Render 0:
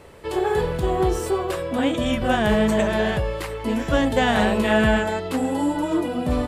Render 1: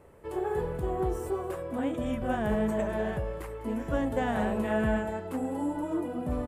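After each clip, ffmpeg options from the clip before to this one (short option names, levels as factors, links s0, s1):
-af "equalizer=f=4100:t=o:w=1.7:g=-14,aecho=1:1:203:0.158,volume=0.376"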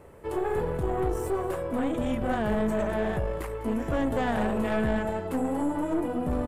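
-filter_complex "[0:a]asplit=2[s0][s1];[s1]alimiter=level_in=1.19:limit=0.0631:level=0:latency=1,volume=0.841,volume=1.26[s2];[s0][s2]amix=inputs=2:normalize=0,aeval=exprs='(tanh(10*val(0)+0.5)-tanh(0.5))/10':c=same"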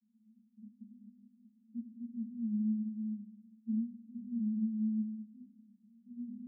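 -af "asuperpass=centerf=220:order=12:qfactor=5.4,volume=0.708"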